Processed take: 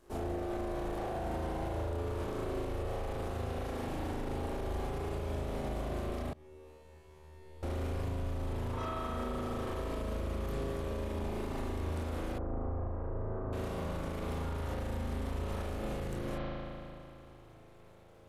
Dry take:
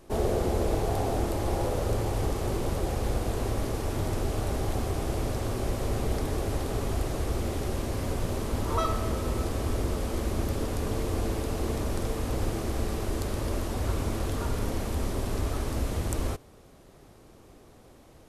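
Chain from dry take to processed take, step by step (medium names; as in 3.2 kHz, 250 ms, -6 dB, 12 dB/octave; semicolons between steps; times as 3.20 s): saturation -26 dBFS, distortion -13 dB; reverb removal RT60 0.68 s; crossover distortion -59 dBFS; chorus 0.19 Hz, depth 3.7 ms; spring tank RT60 2.8 s, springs 37 ms, chirp 35 ms, DRR -8 dB; peak limiter -25.5 dBFS, peak gain reduction 10.5 dB; 6.33–7.63 s: feedback comb 76 Hz, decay 1.7 s, harmonics all, mix 100%; 12.38–13.53 s: low-pass 1.3 kHz 24 dB/octave; trim -3 dB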